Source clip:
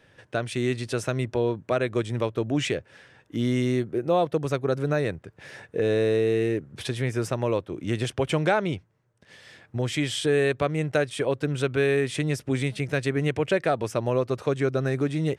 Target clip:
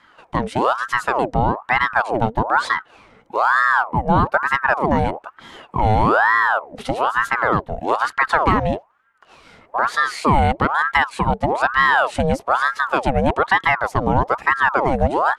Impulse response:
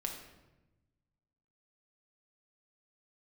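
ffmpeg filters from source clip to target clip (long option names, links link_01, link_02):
-af "tiltshelf=frequency=1300:gain=5,aeval=exprs='val(0)*sin(2*PI*910*n/s+910*0.65/1.1*sin(2*PI*1.1*n/s))':channel_layout=same,volume=6dB"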